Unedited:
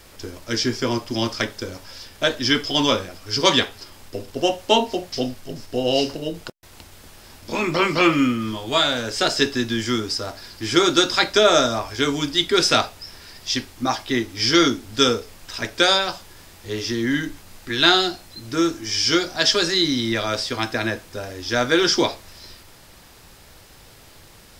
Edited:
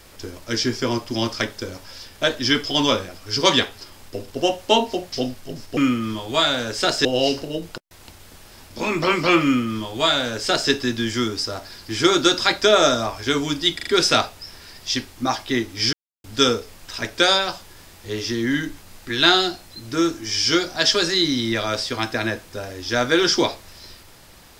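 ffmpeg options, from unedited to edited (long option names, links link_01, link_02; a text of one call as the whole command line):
ffmpeg -i in.wav -filter_complex "[0:a]asplit=8[link_01][link_02][link_03][link_04][link_05][link_06][link_07][link_08];[link_01]atrim=end=5.772[link_09];[link_02]atrim=start=8.148:end=9.432[link_10];[link_03]atrim=start=5.768:end=12.512[link_11];[link_04]atrim=start=12.468:end=12.512[link_12];[link_05]atrim=start=12.468:end=12.512[link_13];[link_06]atrim=start=12.468:end=14.53,asetpts=PTS-STARTPTS,afade=type=out:start_time=2.058:duration=0.004:curve=hsin[link_14];[link_07]atrim=start=14.53:end=14.84,asetpts=PTS-STARTPTS,volume=0[link_15];[link_08]atrim=start=14.84,asetpts=PTS-STARTPTS,afade=type=in:duration=0.004:curve=hsin[link_16];[link_09][link_10]acrossfade=duration=0.004:curve1=hsin:curve2=hsin[link_17];[link_17][link_11]acrossfade=duration=0.004:curve1=hsin:curve2=hsin[link_18];[link_18][link_12]acrossfade=duration=0.004:curve1=hsin:curve2=hsin[link_19];[link_19][link_13]acrossfade=duration=0.004:curve1=hsin:curve2=hsin[link_20];[link_14][link_15][link_16]concat=n=3:v=0:a=1[link_21];[link_20][link_21]acrossfade=duration=0.004:curve1=hsin:curve2=hsin" out.wav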